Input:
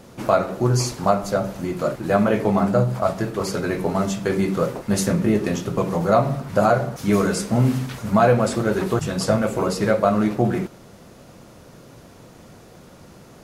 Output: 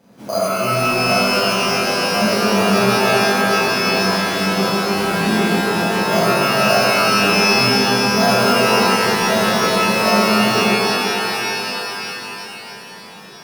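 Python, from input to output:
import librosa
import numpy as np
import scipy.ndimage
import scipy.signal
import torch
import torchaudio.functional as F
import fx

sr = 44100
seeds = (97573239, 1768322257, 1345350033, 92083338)

y = scipy.signal.sosfilt(scipy.signal.butter(2, 140.0, 'highpass', fs=sr, output='sos'), x)
y = fx.small_body(y, sr, hz=(200.0, 650.0), ring_ms=45, db=7)
y = np.repeat(y[::8], 8)[:len(y)]
y = fx.rev_shimmer(y, sr, seeds[0], rt60_s=3.9, semitones=12, shimmer_db=-2, drr_db=-10.0)
y = y * librosa.db_to_amplitude(-12.0)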